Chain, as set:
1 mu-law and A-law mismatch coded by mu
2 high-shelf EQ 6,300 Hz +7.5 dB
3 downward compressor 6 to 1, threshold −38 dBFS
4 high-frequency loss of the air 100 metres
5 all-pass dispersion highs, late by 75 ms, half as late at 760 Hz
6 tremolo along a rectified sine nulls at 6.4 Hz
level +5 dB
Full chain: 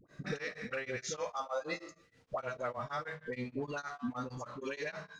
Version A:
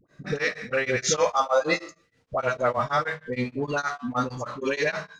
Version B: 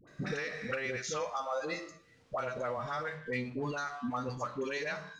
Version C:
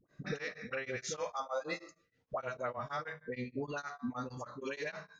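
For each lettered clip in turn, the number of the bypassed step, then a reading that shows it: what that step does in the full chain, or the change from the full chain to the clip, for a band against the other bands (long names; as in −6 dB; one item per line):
3, average gain reduction 11.5 dB
6, change in momentary loudness spread −1 LU
1, distortion level −23 dB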